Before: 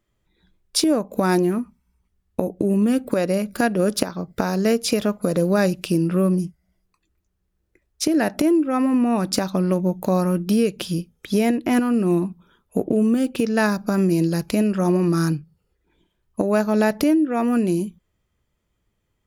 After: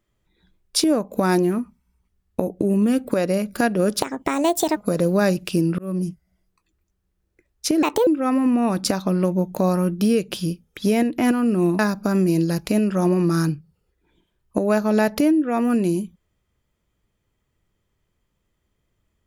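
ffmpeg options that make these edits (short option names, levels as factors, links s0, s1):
-filter_complex "[0:a]asplit=7[s0][s1][s2][s3][s4][s5][s6];[s0]atrim=end=4.024[s7];[s1]atrim=start=4.02:end=5.13,asetpts=PTS-STARTPTS,asetrate=65709,aresample=44100,atrim=end_sample=32853,asetpts=PTS-STARTPTS[s8];[s2]atrim=start=5.126:end=6.15,asetpts=PTS-STARTPTS,afade=t=out:st=1.02:d=0.004:c=hsin[s9];[s3]atrim=start=6.15:end=8.194,asetpts=PTS-STARTPTS,afade=t=in:d=0.3[s10];[s4]atrim=start=8.19:end=8.55,asetpts=PTS-STARTPTS,asetrate=64827,aresample=44100[s11];[s5]atrim=start=8.546:end=12.272[s12];[s6]atrim=start=13.618[s13];[s7][s8]acrossfade=d=0.004:c1=hsin:c2=hsin[s14];[s9][s10]concat=n=2:v=0:a=1[s15];[s14][s15]acrossfade=d=0.004:c1=hsin:c2=hsin[s16];[s16][s11]acrossfade=d=0.004:c1=hsin:c2=hsin[s17];[s17][s12]acrossfade=d=0.004:c1=hsin:c2=hsin[s18];[s18][s13]acrossfade=d=0.004:c1=hsin:c2=hsin"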